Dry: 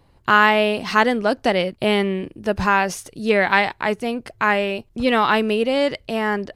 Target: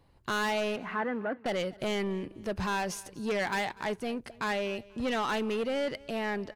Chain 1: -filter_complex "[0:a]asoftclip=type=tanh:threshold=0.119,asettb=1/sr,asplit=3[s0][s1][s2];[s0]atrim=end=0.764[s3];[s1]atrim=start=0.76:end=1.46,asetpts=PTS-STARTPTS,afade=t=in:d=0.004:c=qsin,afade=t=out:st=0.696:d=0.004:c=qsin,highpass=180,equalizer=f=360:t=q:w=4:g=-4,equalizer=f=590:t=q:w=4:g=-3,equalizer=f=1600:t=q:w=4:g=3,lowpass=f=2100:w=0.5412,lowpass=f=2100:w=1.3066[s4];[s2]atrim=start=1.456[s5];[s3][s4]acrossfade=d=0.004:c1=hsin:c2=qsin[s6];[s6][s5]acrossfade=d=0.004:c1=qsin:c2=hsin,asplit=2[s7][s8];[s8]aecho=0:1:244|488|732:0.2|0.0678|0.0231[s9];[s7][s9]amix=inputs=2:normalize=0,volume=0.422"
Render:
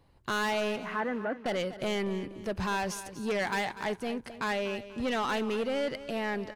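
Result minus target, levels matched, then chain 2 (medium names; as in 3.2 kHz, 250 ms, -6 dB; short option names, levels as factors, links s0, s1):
echo-to-direct +8 dB
-filter_complex "[0:a]asoftclip=type=tanh:threshold=0.119,asettb=1/sr,asplit=3[s0][s1][s2];[s0]atrim=end=0.764[s3];[s1]atrim=start=0.76:end=1.46,asetpts=PTS-STARTPTS,afade=t=in:d=0.004:c=qsin,afade=t=out:st=0.696:d=0.004:c=qsin,highpass=180,equalizer=f=360:t=q:w=4:g=-4,equalizer=f=590:t=q:w=4:g=-3,equalizer=f=1600:t=q:w=4:g=3,lowpass=f=2100:w=0.5412,lowpass=f=2100:w=1.3066[s4];[s2]atrim=start=1.456[s5];[s3][s4]acrossfade=d=0.004:c1=hsin:c2=qsin[s6];[s6][s5]acrossfade=d=0.004:c1=qsin:c2=hsin,asplit=2[s7][s8];[s8]aecho=0:1:244|488:0.0794|0.027[s9];[s7][s9]amix=inputs=2:normalize=0,volume=0.422"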